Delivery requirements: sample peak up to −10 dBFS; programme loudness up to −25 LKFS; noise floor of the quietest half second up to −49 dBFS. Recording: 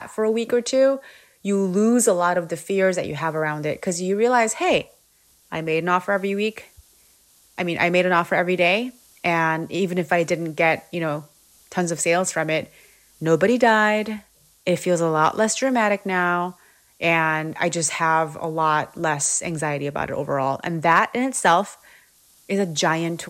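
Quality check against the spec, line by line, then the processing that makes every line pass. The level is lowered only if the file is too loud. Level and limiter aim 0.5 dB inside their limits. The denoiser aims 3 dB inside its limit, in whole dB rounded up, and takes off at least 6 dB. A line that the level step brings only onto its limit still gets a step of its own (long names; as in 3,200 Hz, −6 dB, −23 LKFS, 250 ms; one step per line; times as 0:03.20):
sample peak −5.5 dBFS: out of spec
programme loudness −21.0 LKFS: out of spec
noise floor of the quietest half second −58 dBFS: in spec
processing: level −4.5 dB
brickwall limiter −10.5 dBFS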